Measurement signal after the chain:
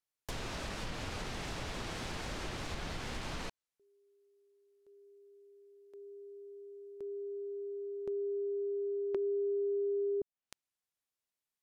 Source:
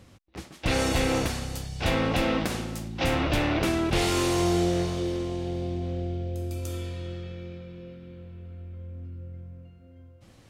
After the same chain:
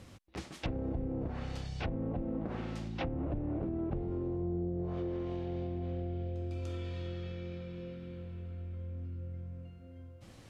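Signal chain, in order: low-pass that closes with the level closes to 340 Hz, closed at -20.5 dBFS; compression 2:1, threshold -39 dBFS

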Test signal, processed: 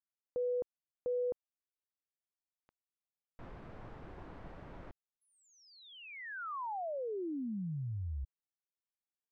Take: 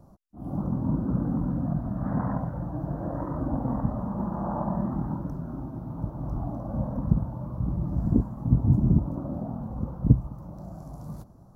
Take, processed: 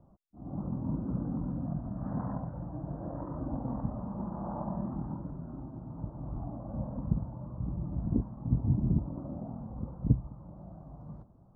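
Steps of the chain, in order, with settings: low-pass 1.3 kHz 12 dB/octave; trim -7 dB

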